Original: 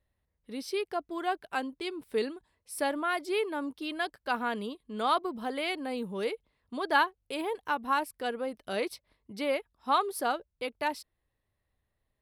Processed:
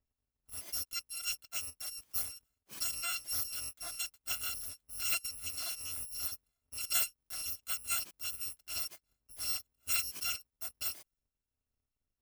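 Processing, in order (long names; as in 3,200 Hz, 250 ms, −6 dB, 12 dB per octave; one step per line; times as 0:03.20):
samples in bit-reversed order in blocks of 256 samples
one half of a high-frequency compander decoder only
level −6.5 dB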